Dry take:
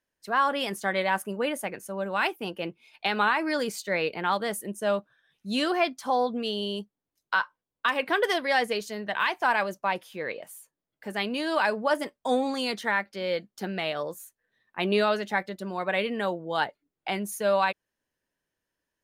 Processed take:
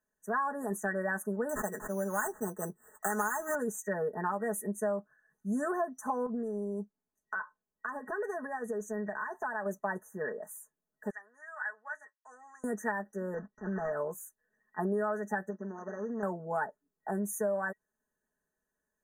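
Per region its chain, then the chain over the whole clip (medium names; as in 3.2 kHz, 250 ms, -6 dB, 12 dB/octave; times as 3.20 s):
1.49–3.55 s: treble shelf 2.6 kHz +7 dB + careless resampling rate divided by 8×, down none, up hold
6.26–9.66 s: compression 4:1, threshold -31 dBFS + treble shelf 10 kHz -9.5 dB
11.10–12.64 s: Chebyshev band-pass 1.9–5.5 kHz + treble shelf 3 kHz -7.5 dB
13.34–13.93 s: block-companded coder 3-bit + elliptic low-pass 4.6 kHz, stop band 50 dB + transient shaper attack -9 dB, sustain +3 dB
15.50–16.23 s: median filter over 41 samples + compression 4:1, threshold -34 dBFS + brick-wall FIR band-pass 180–6700 Hz
whole clip: FFT band-reject 1.9–5.9 kHz; comb 4.7 ms, depth 85%; compression, threshold -25 dBFS; trim -3.5 dB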